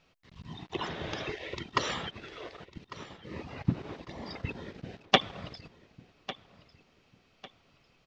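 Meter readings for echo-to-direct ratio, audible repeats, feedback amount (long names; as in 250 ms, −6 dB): −16.5 dB, 2, 33%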